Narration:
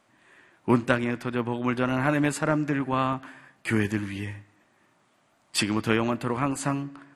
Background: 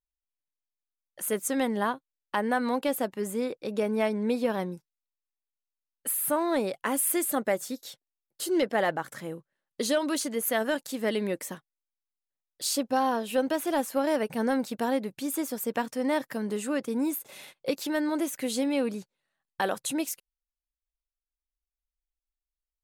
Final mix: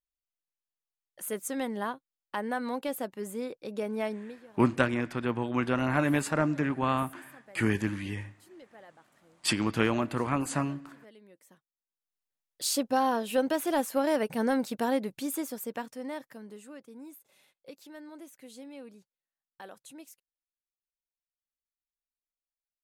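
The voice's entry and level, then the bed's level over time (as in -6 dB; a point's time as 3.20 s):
3.90 s, -2.5 dB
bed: 4.13 s -5.5 dB
4.45 s -26.5 dB
11.35 s -26.5 dB
12.16 s -0.5 dB
15.16 s -0.5 dB
16.83 s -18.5 dB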